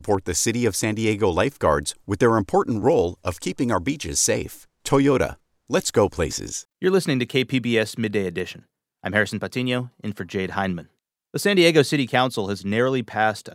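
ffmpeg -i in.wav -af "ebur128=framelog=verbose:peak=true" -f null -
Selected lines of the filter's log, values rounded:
Integrated loudness:
  I:         -22.0 LUFS
  Threshold: -32.4 LUFS
Loudness range:
  LRA:         3.9 LU
  Threshold: -42.7 LUFS
  LRA low:   -25.3 LUFS
  LRA high:  -21.4 LUFS
True peak:
  Peak:       -2.8 dBFS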